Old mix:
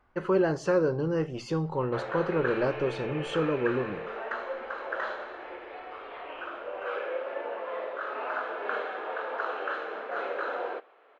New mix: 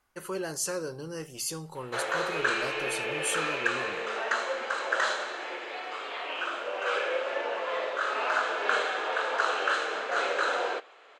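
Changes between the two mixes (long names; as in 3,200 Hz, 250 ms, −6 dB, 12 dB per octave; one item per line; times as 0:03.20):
speech −12.0 dB
master: remove head-to-tape spacing loss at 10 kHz 43 dB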